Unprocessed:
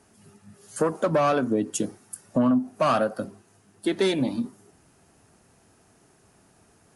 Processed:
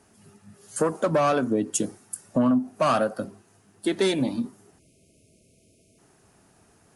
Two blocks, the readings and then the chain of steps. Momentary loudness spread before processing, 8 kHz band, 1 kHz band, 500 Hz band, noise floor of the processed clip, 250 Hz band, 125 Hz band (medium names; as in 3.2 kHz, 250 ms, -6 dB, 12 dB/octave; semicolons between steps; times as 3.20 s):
14 LU, +4.0 dB, 0.0 dB, 0.0 dB, -61 dBFS, 0.0 dB, 0.0 dB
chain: spectral selection erased 4.79–5.98 s, 680–2100 Hz; dynamic bell 8.2 kHz, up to +5 dB, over -49 dBFS, Q 1.2